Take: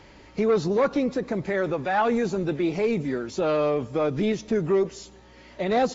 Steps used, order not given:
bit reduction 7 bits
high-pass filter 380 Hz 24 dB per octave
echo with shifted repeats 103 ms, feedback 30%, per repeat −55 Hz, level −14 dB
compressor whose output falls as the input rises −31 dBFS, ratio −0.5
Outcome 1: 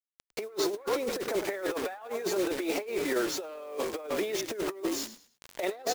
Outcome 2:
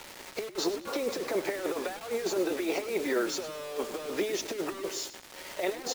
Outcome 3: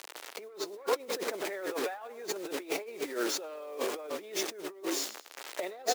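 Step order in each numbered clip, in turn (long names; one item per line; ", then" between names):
high-pass filter, then bit reduction, then echo with shifted repeats, then compressor whose output falls as the input rises
high-pass filter, then compressor whose output falls as the input rises, then bit reduction, then echo with shifted repeats
bit reduction, then echo with shifted repeats, then compressor whose output falls as the input rises, then high-pass filter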